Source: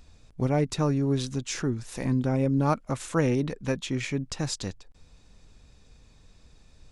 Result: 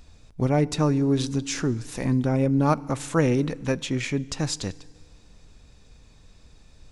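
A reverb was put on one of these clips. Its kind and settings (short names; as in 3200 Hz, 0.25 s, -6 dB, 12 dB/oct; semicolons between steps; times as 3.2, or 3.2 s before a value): FDN reverb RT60 1.9 s, low-frequency decay 1×, high-frequency decay 0.9×, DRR 19.5 dB; gain +3 dB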